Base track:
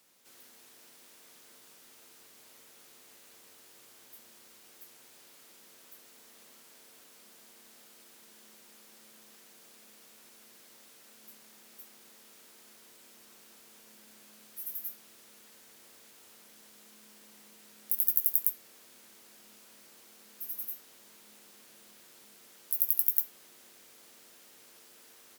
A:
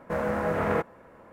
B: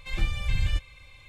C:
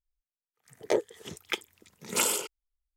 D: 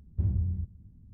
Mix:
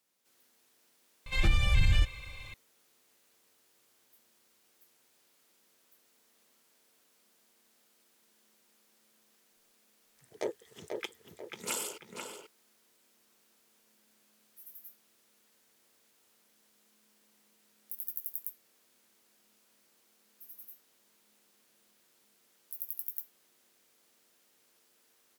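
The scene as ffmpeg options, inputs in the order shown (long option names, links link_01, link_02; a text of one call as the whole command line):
ffmpeg -i bed.wav -i cue0.wav -i cue1.wav -i cue2.wav -filter_complex "[0:a]volume=-12dB[link_01];[2:a]alimiter=level_in=20dB:limit=-1dB:release=50:level=0:latency=1[link_02];[3:a]asplit=2[link_03][link_04];[link_04]adelay=489,lowpass=frequency=3000:poles=1,volume=-4dB,asplit=2[link_05][link_06];[link_06]adelay=489,lowpass=frequency=3000:poles=1,volume=0.4,asplit=2[link_07][link_08];[link_08]adelay=489,lowpass=frequency=3000:poles=1,volume=0.4,asplit=2[link_09][link_10];[link_10]adelay=489,lowpass=frequency=3000:poles=1,volume=0.4,asplit=2[link_11][link_12];[link_12]adelay=489,lowpass=frequency=3000:poles=1,volume=0.4[link_13];[link_03][link_05][link_07][link_09][link_11][link_13]amix=inputs=6:normalize=0[link_14];[link_02]atrim=end=1.28,asetpts=PTS-STARTPTS,volume=-15dB,afade=type=in:duration=0.004:curve=hsin,afade=type=out:start_time=1.276:duration=0.004:curve=hsin,adelay=1260[link_15];[link_14]atrim=end=2.96,asetpts=PTS-STARTPTS,volume=-9dB,afade=type=in:duration=0.004:curve=hsin,afade=type=out:start_time=2.956:duration=0.004:curve=hsin,adelay=9510[link_16];[link_01][link_15][link_16]amix=inputs=3:normalize=0" out.wav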